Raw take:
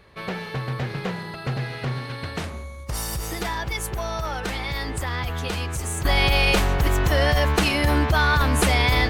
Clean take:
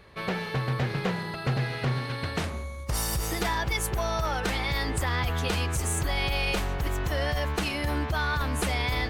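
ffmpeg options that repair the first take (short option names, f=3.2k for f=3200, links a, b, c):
-af "asetnsamples=n=441:p=0,asendcmd='6.05 volume volume -8.5dB',volume=0dB"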